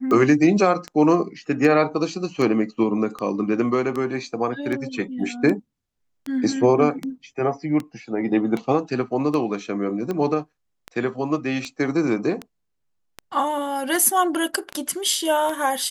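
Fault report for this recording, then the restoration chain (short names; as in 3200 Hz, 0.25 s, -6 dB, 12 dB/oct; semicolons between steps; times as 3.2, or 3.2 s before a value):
tick 78 rpm -15 dBFS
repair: de-click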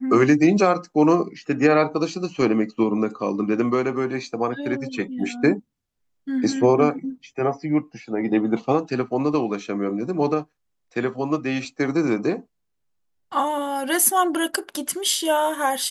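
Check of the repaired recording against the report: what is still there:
none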